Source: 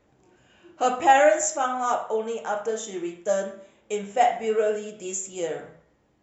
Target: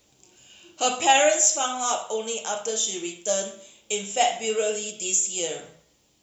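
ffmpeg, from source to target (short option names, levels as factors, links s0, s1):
-filter_complex "[0:a]aexciter=amount=6:drive=6.9:freq=2600,acrossover=split=5500[s0][s1];[s1]acompressor=threshold=0.0501:ratio=4:attack=1:release=60[s2];[s0][s2]amix=inputs=2:normalize=0,volume=0.75"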